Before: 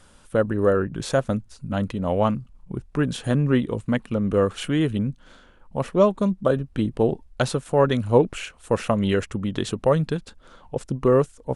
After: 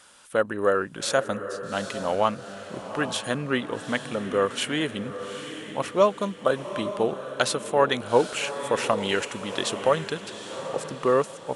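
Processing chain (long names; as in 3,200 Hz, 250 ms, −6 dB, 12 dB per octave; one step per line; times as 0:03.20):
high-pass filter 1,100 Hz 6 dB per octave
feedback delay with all-pass diffusion 824 ms, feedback 41%, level −10 dB
level +5 dB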